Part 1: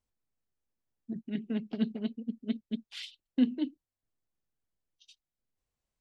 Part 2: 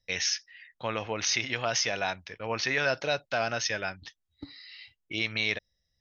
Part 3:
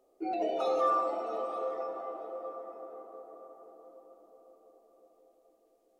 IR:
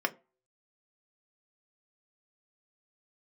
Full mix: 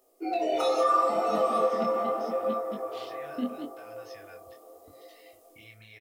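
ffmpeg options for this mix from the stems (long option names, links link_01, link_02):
-filter_complex "[0:a]volume=-2.5dB,asplit=2[link_01][link_02];[1:a]lowshelf=frequency=170:width_type=q:width=1.5:gain=13.5,acompressor=threshold=-39dB:ratio=3,adelay=450,volume=-15.5dB,asplit=2[link_03][link_04];[link_04]volume=-3.5dB[link_05];[2:a]alimiter=level_in=2dB:limit=-24dB:level=0:latency=1:release=295,volume=-2dB,dynaudnorm=framelen=100:gausssize=9:maxgain=7.5dB,crystalizer=i=4.5:c=0,volume=-0.5dB,asplit=2[link_06][link_07];[link_07]volume=-10.5dB[link_08];[link_02]apad=whole_len=284573[link_09];[link_03][link_09]sidechaincompress=threshold=-45dB:ratio=8:attack=16:release=310[link_10];[3:a]atrim=start_sample=2205[link_11];[link_05][link_08]amix=inputs=2:normalize=0[link_12];[link_12][link_11]afir=irnorm=-1:irlink=0[link_13];[link_01][link_10][link_06][link_13]amix=inputs=4:normalize=0,flanger=delay=18.5:depth=7.9:speed=0.77"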